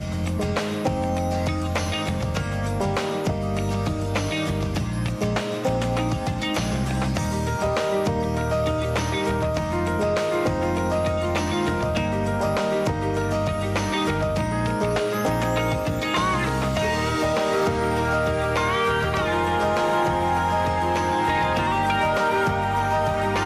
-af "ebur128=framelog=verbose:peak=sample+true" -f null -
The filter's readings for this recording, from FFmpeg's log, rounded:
Integrated loudness:
  I:         -23.5 LUFS
  Threshold: -33.4 LUFS
Loudness range:
  LRA:         3.3 LU
  Threshold: -43.5 LUFS
  LRA low:   -25.2 LUFS
  LRA high:  -21.9 LUFS
Sample peak:
  Peak:      -14.1 dBFS
True peak:
  Peak:      -14.1 dBFS